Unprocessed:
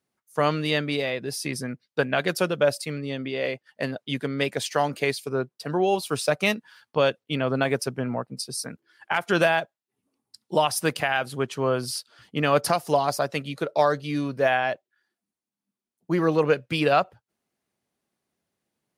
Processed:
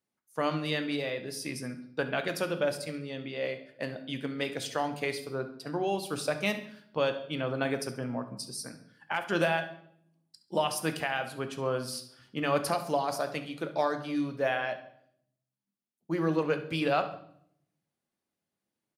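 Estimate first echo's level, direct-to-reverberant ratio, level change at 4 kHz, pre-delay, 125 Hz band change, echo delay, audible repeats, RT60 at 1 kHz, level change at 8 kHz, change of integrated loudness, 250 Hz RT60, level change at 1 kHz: −16.0 dB, 7.5 dB, −6.5 dB, 3 ms, −7.5 dB, 68 ms, 1, 0.60 s, −7.0 dB, −7.0 dB, 0.95 s, −7.0 dB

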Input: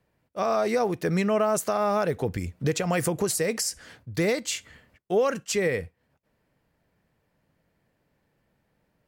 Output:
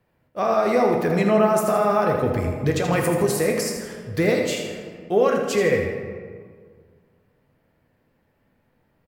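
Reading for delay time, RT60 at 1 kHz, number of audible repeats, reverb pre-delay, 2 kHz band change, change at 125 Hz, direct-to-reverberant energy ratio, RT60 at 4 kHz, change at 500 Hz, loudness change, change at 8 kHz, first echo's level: 81 ms, 1.8 s, 1, 8 ms, +4.5 dB, +5.0 dB, 0.5 dB, 0.95 s, +6.0 dB, +5.0 dB, −1.5 dB, −8.5 dB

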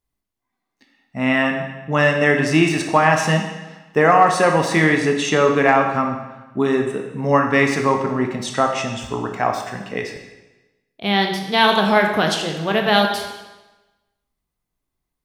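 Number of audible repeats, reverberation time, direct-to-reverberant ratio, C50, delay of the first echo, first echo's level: no echo audible, 1.1 s, 2.5 dB, 5.5 dB, no echo audible, no echo audible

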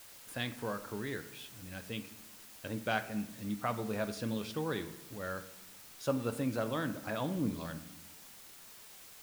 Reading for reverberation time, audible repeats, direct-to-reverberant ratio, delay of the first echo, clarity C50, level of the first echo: 1.0 s, no echo audible, 8.5 dB, no echo audible, 12.5 dB, no echo audible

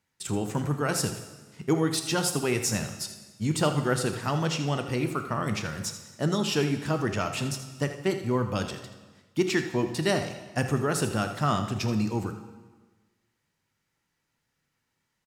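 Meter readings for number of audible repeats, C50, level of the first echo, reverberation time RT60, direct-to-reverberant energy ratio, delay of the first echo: 1, 8.0 dB, −12.5 dB, 1.3 s, 6.5 dB, 81 ms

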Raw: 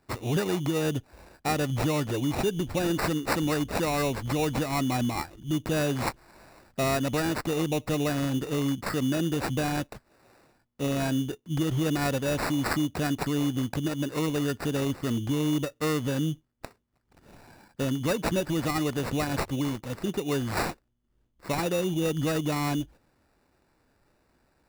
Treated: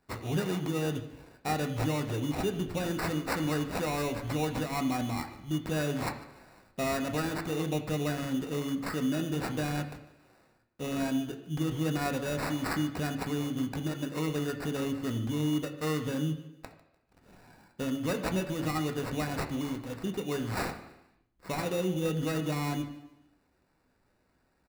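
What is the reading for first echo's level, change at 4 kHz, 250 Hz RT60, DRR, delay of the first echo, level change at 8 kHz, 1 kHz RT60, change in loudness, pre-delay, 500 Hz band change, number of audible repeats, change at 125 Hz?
−19.5 dB, −4.5 dB, 0.95 s, 4.0 dB, 149 ms, −5.5 dB, 0.90 s, −4.0 dB, 3 ms, −4.5 dB, 2, −4.0 dB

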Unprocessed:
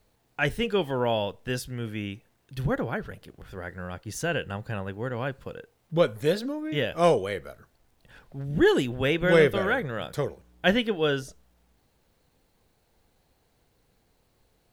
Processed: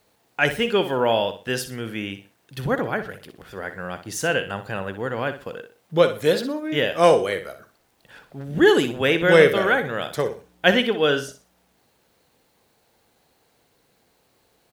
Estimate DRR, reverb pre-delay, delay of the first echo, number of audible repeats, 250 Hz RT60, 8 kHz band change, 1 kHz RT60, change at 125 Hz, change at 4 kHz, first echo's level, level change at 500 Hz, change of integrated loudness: no reverb audible, no reverb audible, 61 ms, 3, no reverb audible, +7.0 dB, no reverb audible, 0.0 dB, +7.0 dB, −11.0 dB, +5.5 dB, +5.5 dB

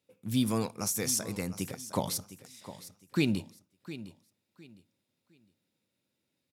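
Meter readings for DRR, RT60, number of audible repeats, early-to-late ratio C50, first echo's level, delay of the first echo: no reverb audible, no reverb audible, 2, no reverb audible, −14.5 dB, 709 ms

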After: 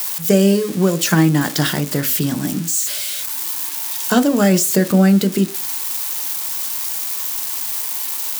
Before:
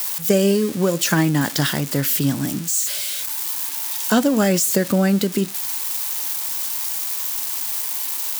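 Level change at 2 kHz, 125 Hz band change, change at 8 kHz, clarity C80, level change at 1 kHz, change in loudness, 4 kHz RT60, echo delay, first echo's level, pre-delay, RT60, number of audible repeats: +1.5 dB, +4.0 dB, +1.5 dB, 27.5 dB, +2.5 dB, +2.5 dB, 0.20 s, no echo audible, no echo audible, 3 ms, 0.40 s, no echo audible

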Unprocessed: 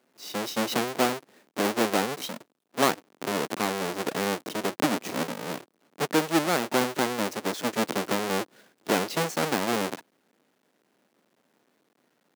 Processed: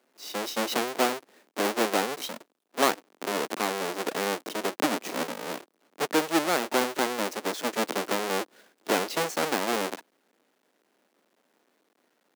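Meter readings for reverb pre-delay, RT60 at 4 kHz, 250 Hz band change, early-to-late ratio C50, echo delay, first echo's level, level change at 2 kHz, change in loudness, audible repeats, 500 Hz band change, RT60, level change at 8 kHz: no reverb audible, no reverb audible, −3.0 dB, no reverb audible, no echo audible, no echo audible, 0.0 dB, −0.5 dB, no echo audible, −0.5 dB, no reverb audible, 0.0 dB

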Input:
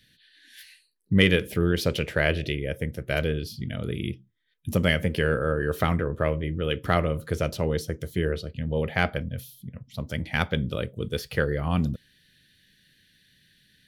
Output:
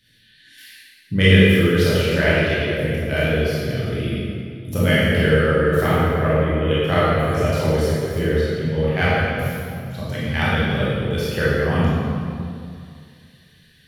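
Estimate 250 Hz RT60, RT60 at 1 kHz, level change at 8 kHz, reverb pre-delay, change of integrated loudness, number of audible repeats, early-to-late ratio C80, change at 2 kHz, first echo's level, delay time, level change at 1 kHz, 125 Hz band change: 2.4 s, 2.3 s, +6.0 dB, 21 ms, +7.5 dB, no echo audible, −1.5 dB, +7.5 dB, no echo audible, no echo audible, +7.5 dB, +8.0 dB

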